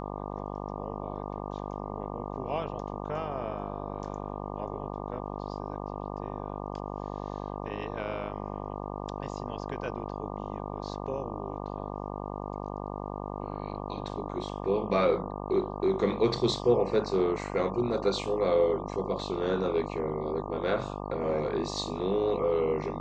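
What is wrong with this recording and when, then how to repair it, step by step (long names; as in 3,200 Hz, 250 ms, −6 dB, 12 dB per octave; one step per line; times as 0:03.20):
mains buzz 50 Hz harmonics 24 −37 dBFS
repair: hum removal 50 Hz, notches 24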